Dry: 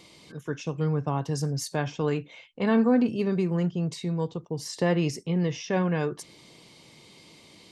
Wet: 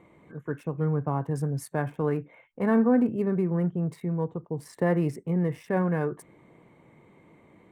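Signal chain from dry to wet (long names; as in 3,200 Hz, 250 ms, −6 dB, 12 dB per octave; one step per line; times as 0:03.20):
adaptive Wiener filter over 9 samples
flat-topped bell 4,300 Hz −14.5 dB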